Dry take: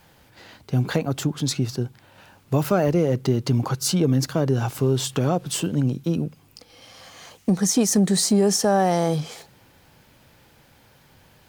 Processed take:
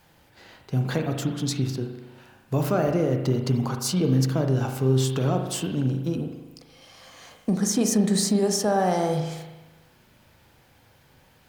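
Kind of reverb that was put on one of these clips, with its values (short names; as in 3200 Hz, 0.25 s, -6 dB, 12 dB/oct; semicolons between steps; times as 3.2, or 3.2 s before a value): spring tank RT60 1.1 s, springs 38 ms, chirp 55 ms, DRR 4 dB; gain -4 dB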